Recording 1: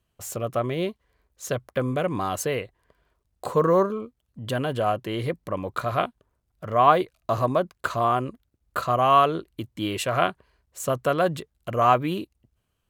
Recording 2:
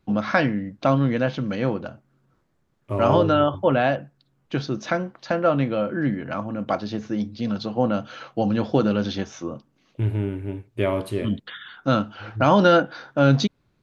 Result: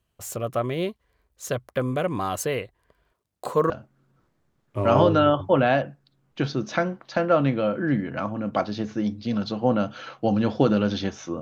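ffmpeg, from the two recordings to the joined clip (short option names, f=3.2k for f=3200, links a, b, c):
-filter_complex "[0:a]asettb=1/sr,asplit=3[a][b][c];[a]atrim=end=3.124[d];[b]atrim=start=3.12:end=3.7,asetpts=PTS-STARTPTS,afade=t=in:d=0.004:c=qsin,afade=t=out:st=0.576:d=0.004:c=qsin,highpass=150[e];[c]atrim=start=3.696[f];[d][e]acrossfade=d=0.004:c1=hsin:c2=qsin[g];[g][f]acrossfade=d=0.004:c1=qsin:c2=hsin,apad=whole_dur=11.41,atrim=end=11.41,atrim=end=3.702[h];[1:a]atrim=start=1.838:end=9.55[i];[h][i]acrossfade=d=0.004:c1=hsin:c2=hsin"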